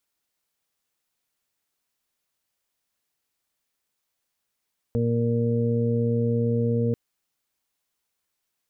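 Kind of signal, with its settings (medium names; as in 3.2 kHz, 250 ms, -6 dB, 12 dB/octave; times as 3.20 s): steady additive tone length 1.99 s, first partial 117 Hz, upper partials -2/-19.5/-2/-18 dB, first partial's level -23.5 dB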